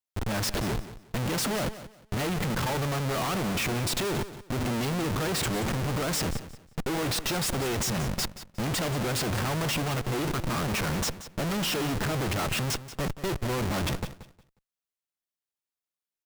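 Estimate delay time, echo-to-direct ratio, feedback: 180 ms, −13.5 dB, 24%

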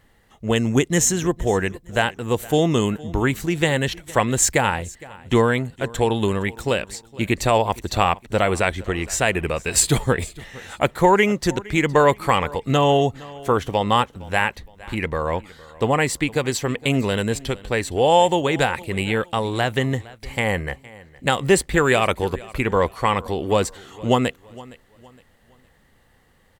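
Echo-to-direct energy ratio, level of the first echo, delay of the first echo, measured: −20.5 dB, −21.0 dB, 463 ms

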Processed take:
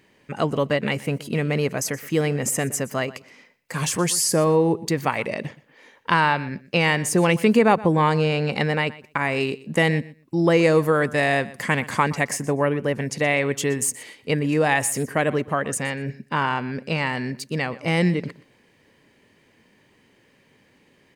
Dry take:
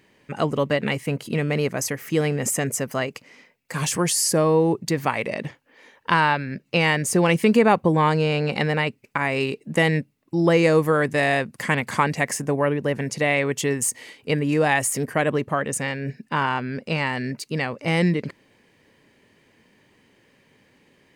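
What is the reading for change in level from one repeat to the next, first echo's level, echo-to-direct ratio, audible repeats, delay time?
−16.0 dB, −19.0 dB, −19.0 dB, 2, 122 ms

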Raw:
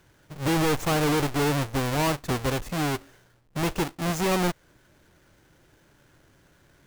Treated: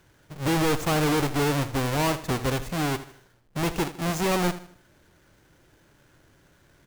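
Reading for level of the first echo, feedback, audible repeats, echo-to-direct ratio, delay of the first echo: −14.0 dB, 38%, 3, −13.5 dB, 78 ms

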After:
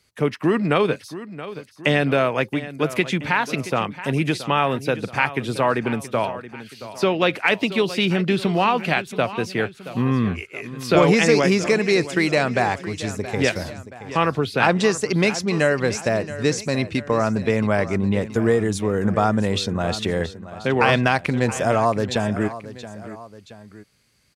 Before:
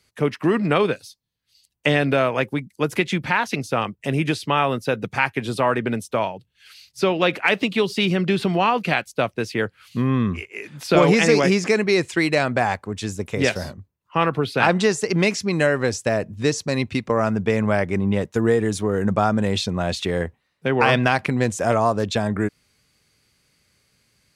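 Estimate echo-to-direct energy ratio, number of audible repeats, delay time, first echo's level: −13.5 dB, 2, 675 ms, −14.5 dB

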